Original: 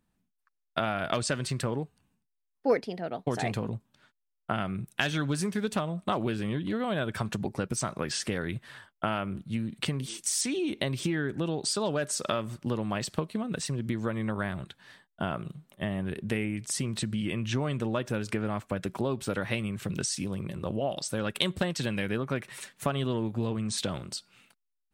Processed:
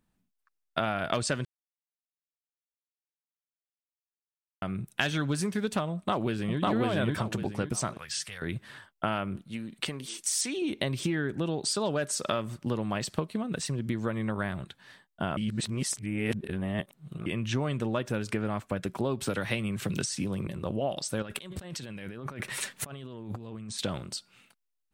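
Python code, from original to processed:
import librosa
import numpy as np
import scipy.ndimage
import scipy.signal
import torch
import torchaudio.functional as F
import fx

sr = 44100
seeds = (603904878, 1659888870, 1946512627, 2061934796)

y = fx.echo_throw(x, sr, start_s=5.93, length_s=0.66, ms=550, feedback_pct=30, wet_db=0.0)
y = fx.tone_stack(y, sr, knobs='10-0-10', at=(7.97, 8.42))
y = fx.peak_eq(y, sr, hz=100.0, db=-11.0, octaves=2.3, at=(9.36, 10.62))
y = fx.band_squash(y, sr, depth_pct=70, at=(19.21, 20.47))
y = fx.over_compress(y, sr, threshold_db=-40.0, ratio=-1.0, at=(21.22, 23.79))
y = fx.edit(y, sr, fx.silence(start_s=1.45, length_s=3.17),
    fx.reverse_span(start_s=15.37, length_s=1.89), tone=tone)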